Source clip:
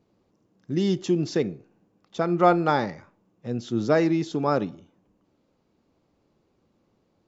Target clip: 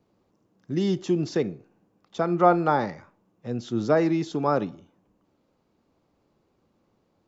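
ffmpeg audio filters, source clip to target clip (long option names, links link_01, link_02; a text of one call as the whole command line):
ffmpeg -i in.wav -filter_complex "[0:a]acrossover=split=390|1300[link_01][link_02][link_03];[link_02]crystalizer=i=8:c=0[link_04];[link_03]alimiter=level_in=6dB:limit=-24dB:level=0:latency=1:release=34,volume=-6dB[link_05];[link_01][link_04][link_05]amix=inputs=3:normalize=0,volume=-1dB" out.wav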